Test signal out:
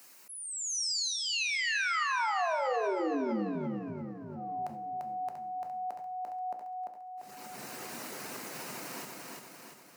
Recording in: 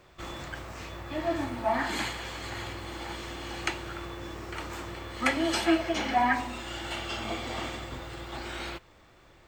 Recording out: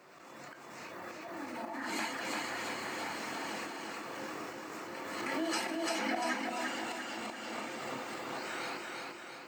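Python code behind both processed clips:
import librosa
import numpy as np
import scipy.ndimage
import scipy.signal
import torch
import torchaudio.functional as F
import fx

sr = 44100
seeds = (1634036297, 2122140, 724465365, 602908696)

p1 = scipy.signal.sosfilt(scipy.signal.butter(4, 180.0, 'highpass', fs=sr, output='sos'), x)
p2 = fx.hum_notches(p1, sr, base_hz=60, count=10)
p3 = fx.dereverb_blind(p2, sr, rt60_s=0.53)
p4 = fx.peak_eq(p3, sr, hz=3400.0, db=-11.5, octaves=0.25)
p5 = fx.level_steps(p4, sr, step_db=9)
p6 = p4 + (p5 * librosa.db_to_amplitude(-1.5))
p7 = fx.auto_swell(p6, sr, attack_ms=525.0)
p8 = p7 + fx.echo_feedback(p7, sr, ms=344, feedback_pct=54, wet_db=-3, dry=0)
p9 = fx.rev_double_slope(p8, sr, seeds[0], early_s=0.51, late_s=4.0, knee_db=-21, drr_db=8.0)
p10 = fx.pre_swell(p9, sr, db_per_s=26.0)
y = p10 * librosa.db_to_amplitude(-4.0)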